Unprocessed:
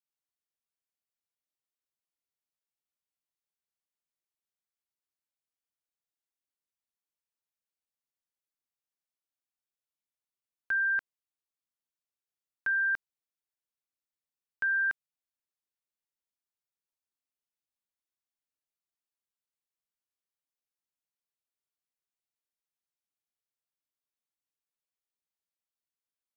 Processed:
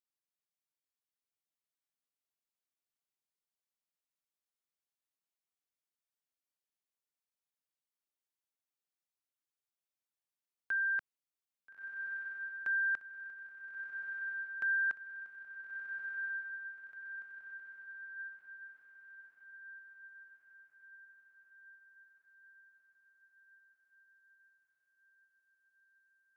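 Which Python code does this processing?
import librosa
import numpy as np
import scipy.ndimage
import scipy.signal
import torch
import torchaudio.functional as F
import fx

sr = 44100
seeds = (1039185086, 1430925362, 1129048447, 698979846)

p1 = fx.highpass(x, sr, hz=130.0, slope=6)
p2 = p1 + fx.echo_diffused(p1, sr, ms=1329, feedback_pct=55, wet_db=-5, dry=0)
y = p2 * librosa.db_to_amplitude(-5.0)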